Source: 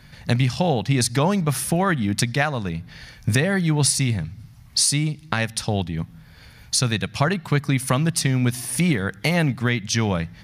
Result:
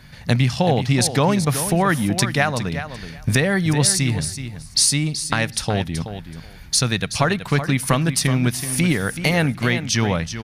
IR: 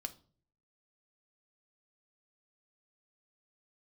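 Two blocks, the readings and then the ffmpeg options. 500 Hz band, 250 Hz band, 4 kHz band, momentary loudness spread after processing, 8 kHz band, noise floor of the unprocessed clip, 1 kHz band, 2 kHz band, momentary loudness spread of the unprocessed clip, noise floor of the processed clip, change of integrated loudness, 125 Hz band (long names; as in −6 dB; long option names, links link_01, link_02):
+2.5 dB, +1.5 dB, +3.0 dB, 10 LU, +3.0 dB, −47 dBFS, +3.0 dB, +3.0 dB, 8 LU, −40 dBFS, +2.0 dB, +1.0 dB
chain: -filter_complex "[0:a]asubboost=boost=3.5:cutoff=53,asplit=2[link_01][link_02];[link_02]aecho=0:1:377|754:0.299|0.0478[link_03];[link_01][link_03]amix=inputs=2:normalize=0,volume=2.5dB"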